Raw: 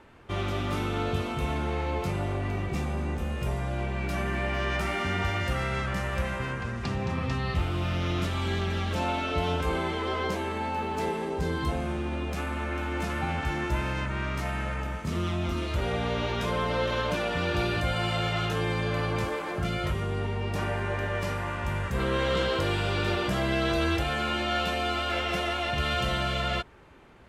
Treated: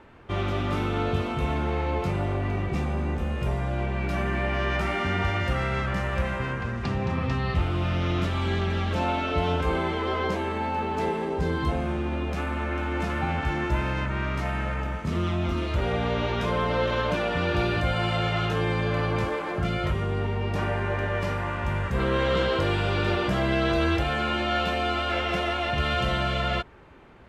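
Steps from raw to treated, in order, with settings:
high-shelf EQ 5,700 Hz −11.5 dB
level +3 dB

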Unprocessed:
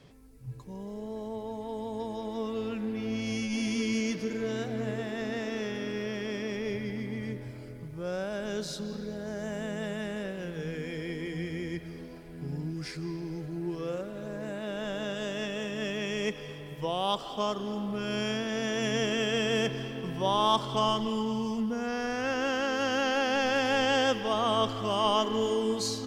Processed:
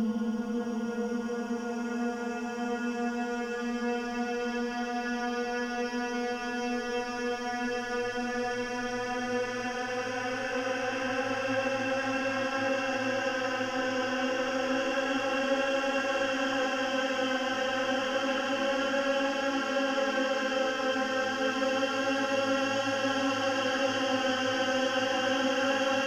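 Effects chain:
mains-hum notches 50/100/150/200/250 Hz
extreme stretch with random phases 20×, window 0.25 s, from 0:21.68

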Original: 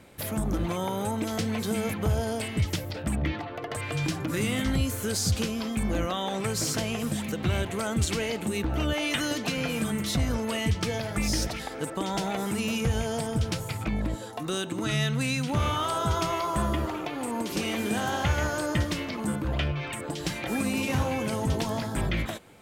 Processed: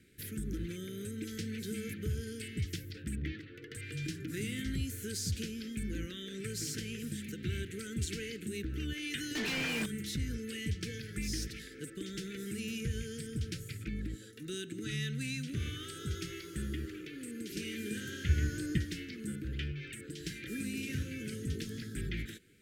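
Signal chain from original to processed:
elliptic band-stop filter 420–1,600 Hz, stop band 60 dB
0:09.35–0:09.86: mid-hump overdrive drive 31 dB, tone 2,600 Hz, clips at −16.5 dBFS
0:18.29–0:18.78: low-shelf EQ 360 Hz +9 dB
level −9 dB

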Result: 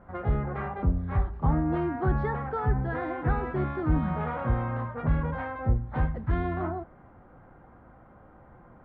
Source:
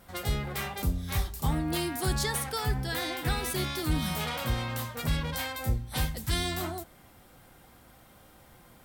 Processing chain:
low-pass filter 1,500 Hz 24 dB per octave
level +4 dB

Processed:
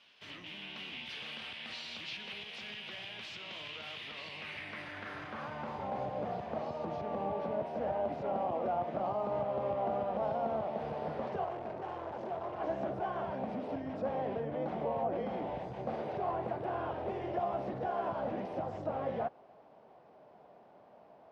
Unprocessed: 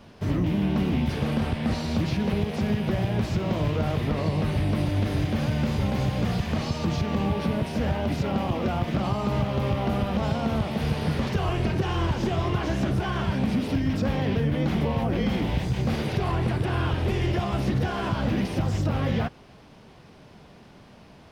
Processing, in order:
0:11.44–0:12.60: hard clipping −28.5 dBFS, distortion −17 dB
band-pass filter sweep 3,000 Hz → 670 Hz, 0:04.21–0:06.10

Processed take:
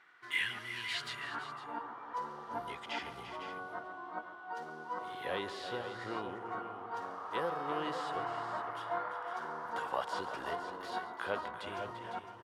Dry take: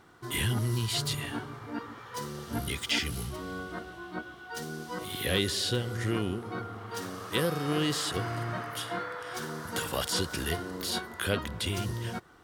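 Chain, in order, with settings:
multi-tap delay 141/343/500/508 ms −15/−11/−17.5/−11 dB
band-pass filter sweep 2,000 Hz → 890 Hz, 0:00.91–0:01.73
level +3.5 dB

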